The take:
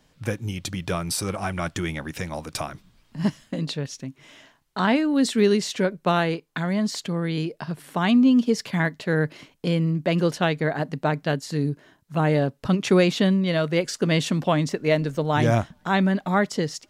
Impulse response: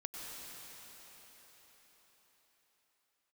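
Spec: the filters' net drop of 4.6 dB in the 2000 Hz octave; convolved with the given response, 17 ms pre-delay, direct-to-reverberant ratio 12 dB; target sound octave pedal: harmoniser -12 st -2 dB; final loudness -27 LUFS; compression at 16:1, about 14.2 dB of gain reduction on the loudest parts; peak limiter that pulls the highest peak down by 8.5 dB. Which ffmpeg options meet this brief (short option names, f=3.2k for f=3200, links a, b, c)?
-filter_complex "[0:a]equalizer=f=2k:t=o:g=-6,acompressor=threshold=-28dB:ratio=16,alimiter=level_in=0.5dB:limit=-24dB:level=0:latency=1,volume=-0.5dB,asplit=2[a][b];[1:a]atrim=start_sample=2205,adelay=17[c];[b][c]afir=irnorm=-1:irlink=0,volume=-11.5dB[d];[a][d]amix=inputs=2:normalize=0,asplit=2[e][f];[f]asetrate=22050,aresample=44100,atempo=2,volume=-2dB[g];[e][g]amix=inputs=2:normalize=0,volume=5.5dB"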